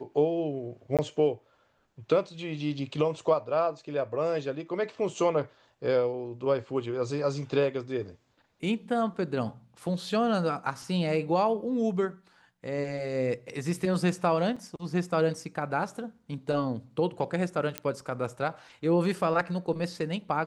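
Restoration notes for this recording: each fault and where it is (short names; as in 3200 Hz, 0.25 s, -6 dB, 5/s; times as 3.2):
0.97–0.99 gap 17 ms
14.56–14.57 gap 5.3 ms
17.78 pop -14 dBFS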